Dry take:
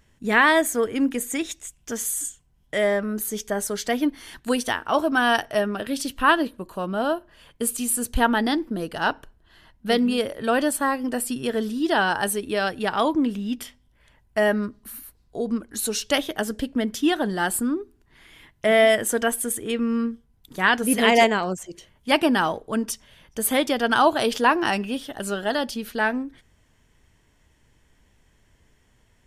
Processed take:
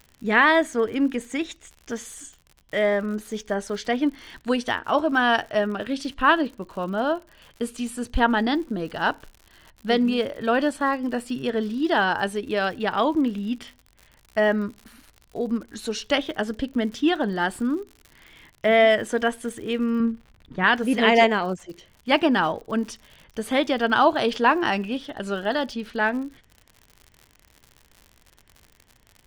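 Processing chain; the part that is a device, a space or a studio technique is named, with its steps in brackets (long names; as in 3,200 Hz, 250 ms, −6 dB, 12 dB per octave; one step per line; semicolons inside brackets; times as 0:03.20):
lo-fi chain (low-pass filter 4,300 Hz 12 dB per octave; tape wow and flutter 21 cents; surface crackle 87 per second −36 dBFS)
0:20.00–0:20.64: bass and treble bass +6 dB, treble −14 dB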